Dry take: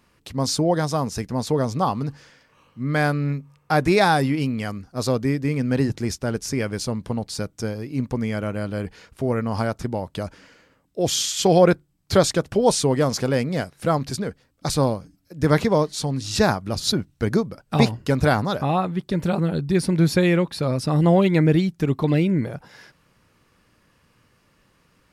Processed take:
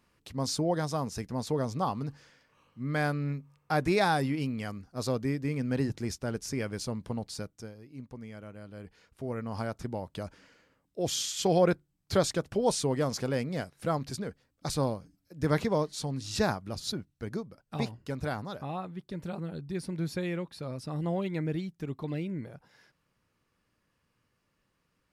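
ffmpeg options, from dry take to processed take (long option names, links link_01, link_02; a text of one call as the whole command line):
ffmpeg -i in.wav -af "volume=1.5dB,afade=type=out:start_time=7.29:duration=0.43:silence=0.298538,afade=type=in:start_time=8.67:duration=1.25:silence=0.316228,afade=type=out:start_time=16.42:duration=0.72:silence=0.501187" out.wav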